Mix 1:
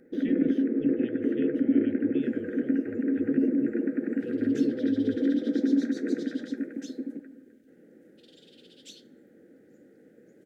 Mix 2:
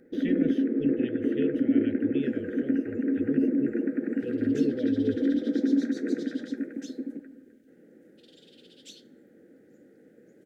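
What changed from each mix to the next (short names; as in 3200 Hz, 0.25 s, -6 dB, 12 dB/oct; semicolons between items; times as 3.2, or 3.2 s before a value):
speech +4.5 dB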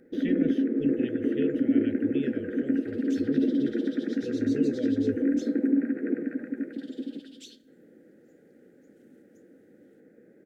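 second sound: entry -1.45 s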